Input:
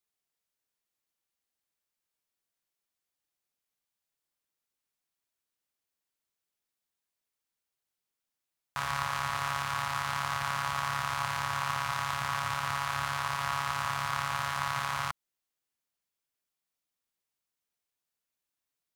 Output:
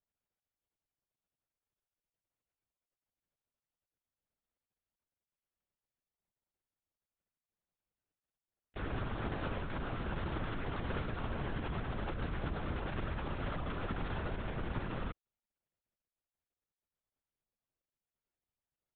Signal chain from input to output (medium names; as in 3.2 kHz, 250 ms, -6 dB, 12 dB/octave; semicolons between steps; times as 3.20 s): median filter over 41 samples; LPC vocoder at 8 kHz whisper; trim +5.5 dB